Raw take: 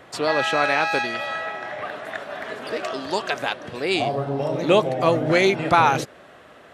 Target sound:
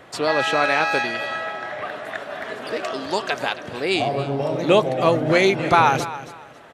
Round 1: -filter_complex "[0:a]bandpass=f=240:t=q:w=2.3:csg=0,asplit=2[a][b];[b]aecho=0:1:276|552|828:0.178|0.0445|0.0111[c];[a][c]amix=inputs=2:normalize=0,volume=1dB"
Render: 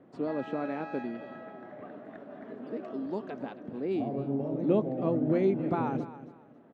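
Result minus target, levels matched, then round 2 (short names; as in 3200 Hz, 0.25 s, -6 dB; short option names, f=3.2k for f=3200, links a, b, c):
250 Hz band +6.5 dB
-filter_complex "[0:a]asplit=2[a][b];[b]aecho=0:1:276|552|828:0.178|0.0445|0.0111[c];[a][c]amix=inputs=2:normalize=0,volume=1dB"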